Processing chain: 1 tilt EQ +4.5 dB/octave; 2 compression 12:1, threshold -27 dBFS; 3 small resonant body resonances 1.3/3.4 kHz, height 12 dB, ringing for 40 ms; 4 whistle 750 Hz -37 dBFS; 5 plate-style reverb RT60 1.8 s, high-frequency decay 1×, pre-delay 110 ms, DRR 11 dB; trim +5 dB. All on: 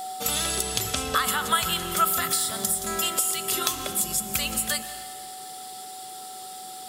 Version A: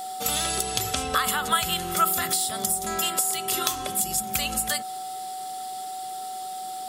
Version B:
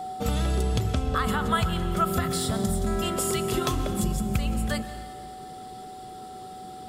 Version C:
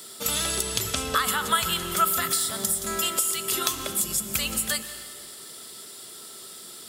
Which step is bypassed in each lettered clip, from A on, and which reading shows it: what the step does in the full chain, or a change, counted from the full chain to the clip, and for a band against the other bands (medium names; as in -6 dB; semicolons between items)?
5, momentary loudness spread change -4 LU; 1, 125 Hz band +15.5 dB; 4, momentary loudness spread change +2 LU